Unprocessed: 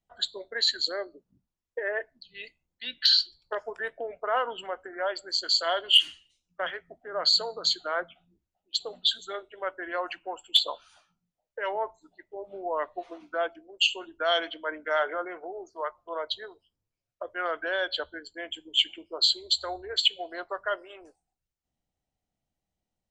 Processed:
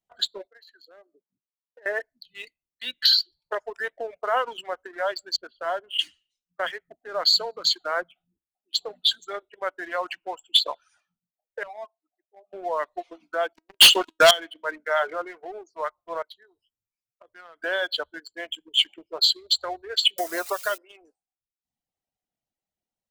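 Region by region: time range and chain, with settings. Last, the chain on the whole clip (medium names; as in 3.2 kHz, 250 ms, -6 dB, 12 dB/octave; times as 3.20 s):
0.47–1.86 s: band-pass filter 790 Hz, Q 0.9 + compression 3:1, threshold -52 dBFS
5.36–5.99 s: Bessel low-pass 1.3 kHz, order 4 + dynamic bell 420 Hz, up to -4 dB, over -40 dBFS, Q 1.2
11.63–12.53 s: vowel filter a + distance through air 400 m
13.53–14.31 s: high-order bell 4.5 kHz +11 dB 1.1 oct + waveshaping leveller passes 5 + feedback comb 320 Hz, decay 0.22 s, mix 40%
16.22–17.64 s: compression 2:1, threshold -56 dBFS + peaking EQ 550 Hz -4 dB 0.7 oct
20.18–20.78 s: zero-crossing glitches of -26.5 dBFS + bass shelf 310 Hz +8 dB + three bands compressed up and down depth 100%
whole clip: bass shelf 140 Hz -11.5 dB; reverb removal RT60 0.89 s; waveshaping leveller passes 1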